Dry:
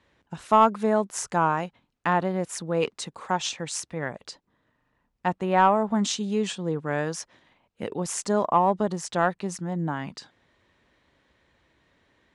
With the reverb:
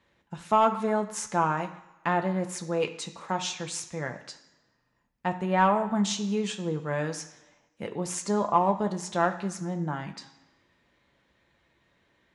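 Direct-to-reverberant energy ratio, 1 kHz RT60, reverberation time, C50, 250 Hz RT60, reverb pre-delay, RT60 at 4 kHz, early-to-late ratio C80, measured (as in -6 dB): 4.0 dB, 1.1 s, 1.1 s, 12.5 dB, 0.95 s, 3 ms, 1.0 s, 14.5 dB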